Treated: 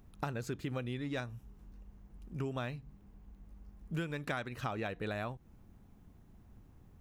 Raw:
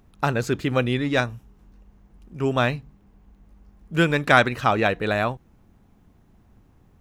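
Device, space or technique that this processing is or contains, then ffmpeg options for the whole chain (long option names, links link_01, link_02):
ASMR close-microphone chain: -af "lowshelf=frequency=230:gain=5,acompressor=threshold=-28dB:ratio=8,highshelf=frequency=8200:gain=5.5,volume=-6.5dB"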